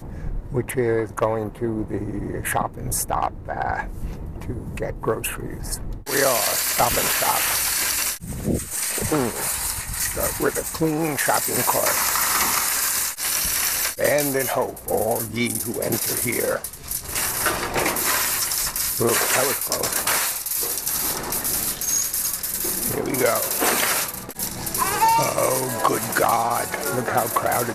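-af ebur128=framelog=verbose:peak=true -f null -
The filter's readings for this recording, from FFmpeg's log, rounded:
Integrated loudness:
  I:         -21.5 LUFS
  Threshold: -31.6 LUFS
Loudness range:
  LRA:         5.8 LU
  Threshold: -41.5 LUFS
  LRA low:   -25.5 LUFS
  LRA high:  -19.8 LUFS
True peak:
  Peak:       -6.0 dBFS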